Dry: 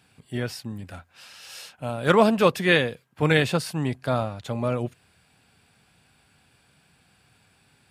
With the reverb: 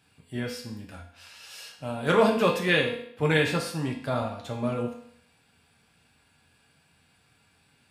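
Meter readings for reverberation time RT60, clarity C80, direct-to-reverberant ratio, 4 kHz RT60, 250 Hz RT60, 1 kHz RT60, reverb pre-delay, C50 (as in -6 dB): 0.65 s, 10.0 dB, -0.5 dB, 0.60 s, 0.65 s, 0.65 s, 4 ms, 6.5 dB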